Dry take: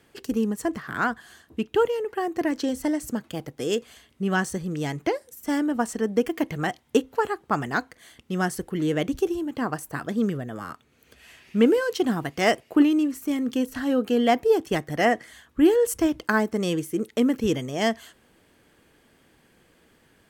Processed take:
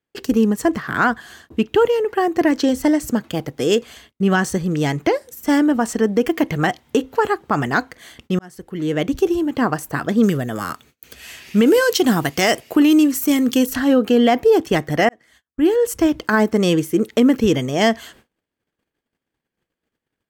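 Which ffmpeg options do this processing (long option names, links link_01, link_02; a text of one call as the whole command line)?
ffmpeg -i in.wav -filter_complex "[0:a]asettb=1/sr,asplit=3[link_01][link_02][link_03];[link_01]atrim=end=10.234[link_04];[link_02]atrim=start=10.23:end=13.76,asetpts=PTS-STARTPTS,afade=type=in:duration=0.004:curve=qsin,afade=type=out:start_time=3.526:duration=0.004:curve=qsin,highshelf=frequency=4300:gain=12[link_05];[link_03]atrim=start=13.756[link_06];[link_04][link_05]acrossfade=duration=0.004:curve1=hsin:curve2=qsin[link_07];[link_07][link_06]acrossfade=duration=0.004:curve1=qsin:curve2=hsin,asplit=3[link_08][link_09][link_10];[link_08]atrim=end=8.39,asetpts=PTS-STARTPTS,afade=type=out:start_time=8.386:duration=0.004:curve=hsin[link_11];[link_09]atrim=start=8.39:end=15.09,asetpts=PTS-STARTPTS,afade=type=in:duration=0.99,afade=type=out:start_time=6.696:duration=0.004:curve=hsin[link_12];[link_10]atrim=start=15.09,asetpts=PTS-STARTPTS,afade=type=in:duration=1.31[link_13];[link_11][link_12][link_13]concat=n=3:v=0:a=1,equalizer=frequency=9800:width_type=o:width=0.61:gain=-5,agate=range=-34dB:threshold=-55dB:ratio=16:detection=peak,alimiter=level_in=14.5dB:limit=-1dB:release=50:level=0:latency=1,volume=-5.5dB" out.wav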